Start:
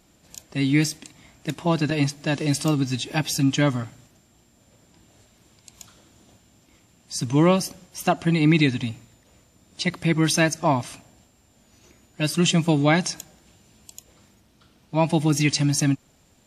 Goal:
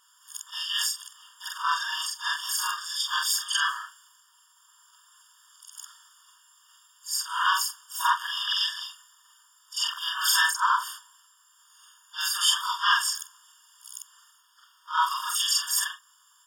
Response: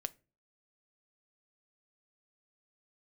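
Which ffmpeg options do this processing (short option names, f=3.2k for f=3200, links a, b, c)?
-filter_complex "[0:a]afftfilt=real='re':imag='-im':win_size=4096:overlap=0.75,highpass=f=570:w=0.5412,highpass=f=570:w=1.3066,asplit=3[a][b][c];[b]asetrate=58866,aresample=44100,atempo=0.749154,volume=-3dB[d];[c]asetrate=66075,aresample=44100,atempo=0.66742,volume=-7dB[e];[a][d][e]amix=inputs=3:normalize=0,afftfilt=real='re*eq(mod(floor(b*sr/1024/920),2),1)':imag='im*eq(mod(floor(b*sr/1024/920),2),1)':win_size=1024:overlap=0.75,volume=7.5dB"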